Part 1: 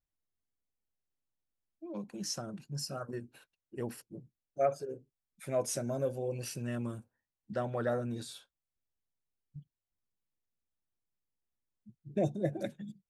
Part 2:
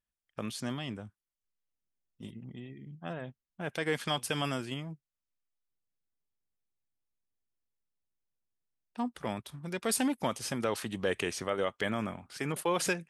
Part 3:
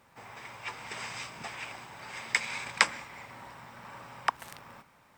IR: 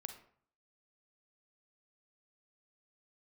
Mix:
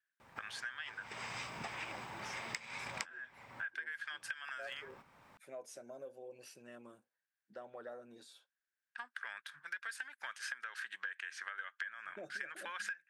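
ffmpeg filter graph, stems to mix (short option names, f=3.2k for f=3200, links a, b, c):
-filter_complex "[0:a]highpass=420,acompressor=threshold=-38dB:ratio=2,volume=-9.5dB[a];[1:a]lowpass=10k,acompressor=threshold=-32dB:ratio=3,highpass=f=1.6k:t=q:w=11,volume=-2.5dB,asplit=2[b][c];[2:a]adelay=200,volume=0.5dB[d];[c]apad=whole_len=236900[e];[d][e]sidechaincompress=threshold=-47dB:ratio=16:attack=21:release=564[f];[a][b][f]amix=inputs=3:normalize=0,highshelf=f=5.8k:g=-7,acompressor=threshold=-39dB:ratio=16"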